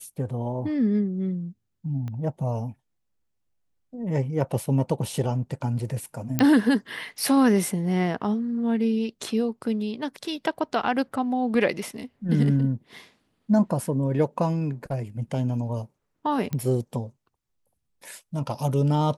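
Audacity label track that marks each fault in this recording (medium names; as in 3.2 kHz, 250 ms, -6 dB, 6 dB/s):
2.080000	2.080000	pop -24 dBFS
6.390000	6.390000	pop -8 dBFS
16.530000	16.530000	pop -16 dBFS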